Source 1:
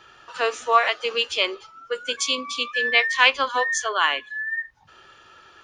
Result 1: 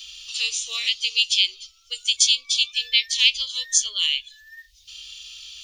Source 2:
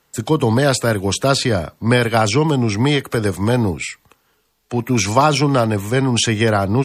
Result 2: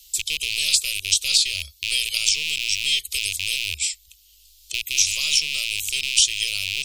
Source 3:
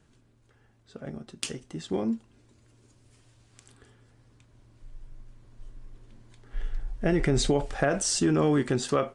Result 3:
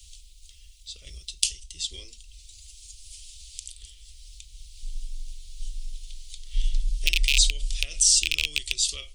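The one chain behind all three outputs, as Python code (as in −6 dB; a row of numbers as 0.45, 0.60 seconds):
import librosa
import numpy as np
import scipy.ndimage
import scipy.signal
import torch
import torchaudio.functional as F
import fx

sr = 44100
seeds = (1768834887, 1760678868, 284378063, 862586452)

y = fx.rattle_buzz(x, sr, strikes_db=-22.0, level_db=-9.0)
y = scipy.signal.sosfilt(scipy.signal.cheby2(4, 40, [110.0, 1700.0], 'bandstop', fs=sr, output='sos'), y)
y = fx.band_squash(y, sr, depth_pct=40)
y = librosa.util.normalize(y) * 10.0 ** (-2 / 20.0)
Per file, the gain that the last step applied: +10.5, +5.5, +12.5 decibels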